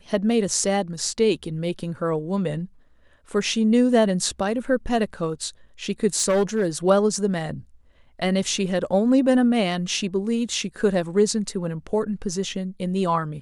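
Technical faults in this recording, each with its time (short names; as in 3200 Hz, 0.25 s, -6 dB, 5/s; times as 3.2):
6.14–6.66 clipped -15.5 dBFS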